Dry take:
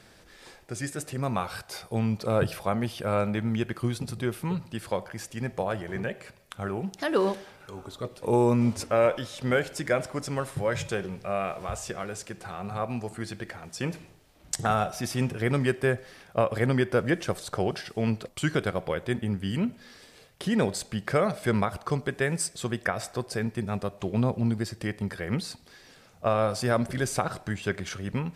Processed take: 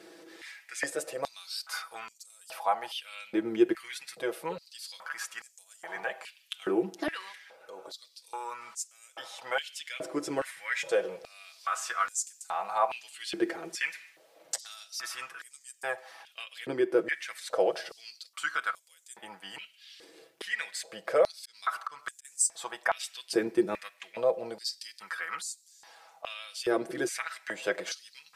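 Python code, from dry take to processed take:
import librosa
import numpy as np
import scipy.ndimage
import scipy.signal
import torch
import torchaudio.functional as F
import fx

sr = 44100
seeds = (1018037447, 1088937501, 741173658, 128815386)

y = x + 0.69 * np.pad(x, (int(6.1 * sr / 1000.0), 0))[:len(x)]
y = fx.auto_swell(y, sr, attack_ms=220.0, at=(21.35, 22.25))
y = fx.rider(y, sr, range_db=5, speed_s=0.5)
y = fx.filter_held_highpass(y, sr, hz=2.4, low_hz=350.0, high_hz=7100.0)
y = F.gain(torch.from_numpy(y), -5.5).numpy()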